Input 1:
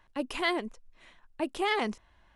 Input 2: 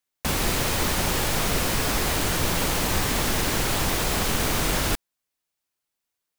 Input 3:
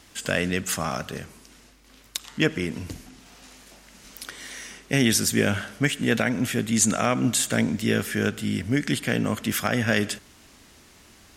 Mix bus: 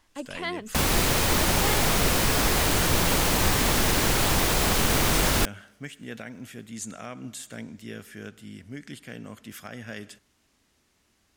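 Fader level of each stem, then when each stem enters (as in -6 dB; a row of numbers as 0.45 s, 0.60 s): -3.5 dB, +1.5 dB, -16.0 dB; 0.00 s, 0.50 s, 0.00 s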